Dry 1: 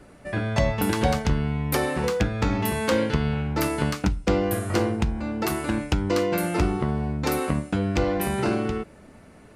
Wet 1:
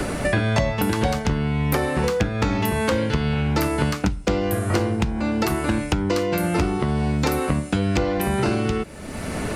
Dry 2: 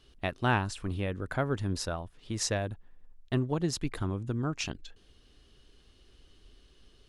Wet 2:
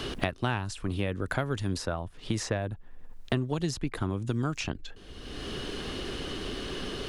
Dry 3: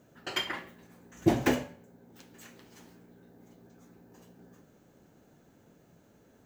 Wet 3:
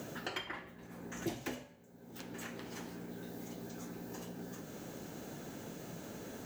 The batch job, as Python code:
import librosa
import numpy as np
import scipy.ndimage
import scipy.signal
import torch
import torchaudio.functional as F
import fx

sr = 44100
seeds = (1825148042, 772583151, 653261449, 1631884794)

y = fx.band_squash(x, sr, depth_pct=100)
y = y * 10.0 ** (1.5 / 20.0)